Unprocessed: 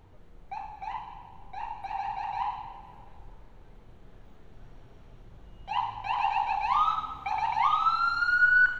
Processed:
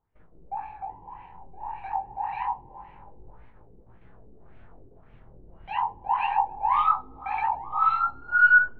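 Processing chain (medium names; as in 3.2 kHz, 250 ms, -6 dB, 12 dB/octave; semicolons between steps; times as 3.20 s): gate -49 dBFS, range -23 dB; LFO low-pass sine 1.8 Hz 380–2400 Hz; chorus 0.26 Hz, delay 17.5 ms, depth 7.1 ms; trim +2 dB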